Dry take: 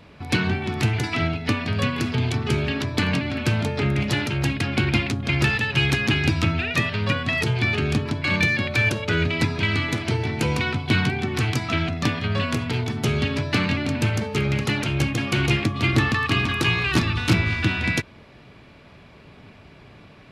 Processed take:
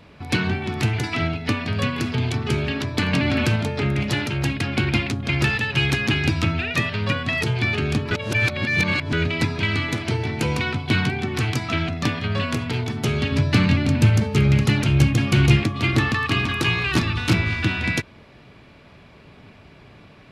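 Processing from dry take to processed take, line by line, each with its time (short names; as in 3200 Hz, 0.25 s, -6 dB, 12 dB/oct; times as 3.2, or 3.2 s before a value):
3.13–3.56 fast leveller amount 70%
8.11–9.13 reverse
13.32–15.63 tone controls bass +8 dB, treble +2 dB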